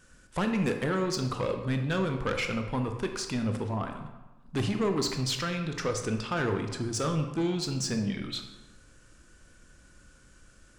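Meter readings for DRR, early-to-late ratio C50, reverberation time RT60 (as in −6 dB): 5.0 dB, 7.5 dB, 1.2 s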